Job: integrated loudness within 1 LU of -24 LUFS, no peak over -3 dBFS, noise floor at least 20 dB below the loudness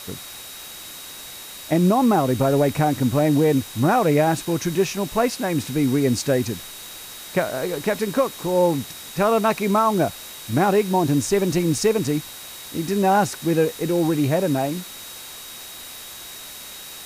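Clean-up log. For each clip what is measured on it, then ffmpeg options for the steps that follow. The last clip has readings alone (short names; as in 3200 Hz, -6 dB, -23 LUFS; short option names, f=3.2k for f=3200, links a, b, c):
steady tone 3800 Hz; tone level -42 dBFS; noise floor -38 dBFS; noise floor target -41 dBFS; loudness -21.0 LUFS; peak -7.0 dBFS; loudness target -24.0 LUFS
-> -af "bandreject=f=3.8k:w=30"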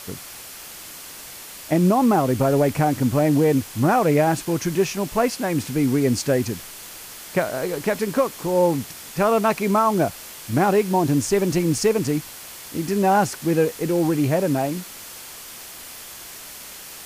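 steady tone none; noise floor -39 dBFS; noise floor target -41 dBFS
-> -af "afftdn=nr=6:nf=-39"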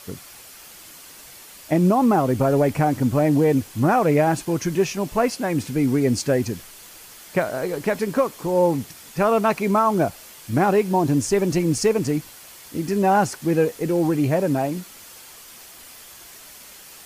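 noise floor -44 dBFS; loudness -21.0 LUFS; peak -7.5 dBFS; loudness target -24.0 LUFS
-> -af "volume=-3dB"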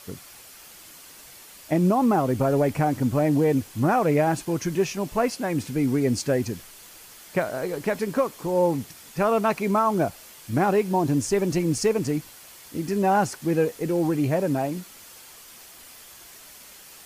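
loudness -24.0 LUFS; peak -10.5 dBFS; noise floor -47 dBFS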